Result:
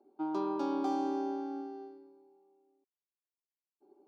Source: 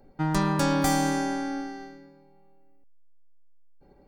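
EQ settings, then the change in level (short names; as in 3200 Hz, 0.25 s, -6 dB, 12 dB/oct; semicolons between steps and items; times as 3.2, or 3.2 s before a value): resonant high-pass 380 Hz, resonance Q 4.5; air absorption 250 m; fixed phaser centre 500 Hz, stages 6; -8.5 dB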